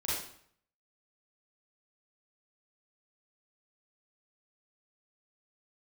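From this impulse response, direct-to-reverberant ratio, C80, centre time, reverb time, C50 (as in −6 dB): −8.5 dB, 4.0 dB, 65 ms, 0.60 s, −1.0 dB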